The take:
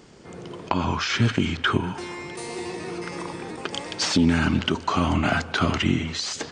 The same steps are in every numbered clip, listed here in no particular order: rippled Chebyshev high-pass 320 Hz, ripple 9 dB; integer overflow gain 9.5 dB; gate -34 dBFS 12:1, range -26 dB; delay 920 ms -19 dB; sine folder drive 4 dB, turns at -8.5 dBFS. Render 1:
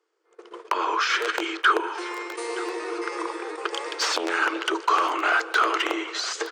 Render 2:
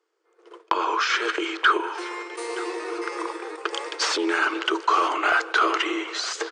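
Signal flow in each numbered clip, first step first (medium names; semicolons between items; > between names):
integer overflow > delay > sine folder > rippled Chebyshev high-pass > gate; delay > gate > rippled Chebyshev high-pass > integer overflow > sine folder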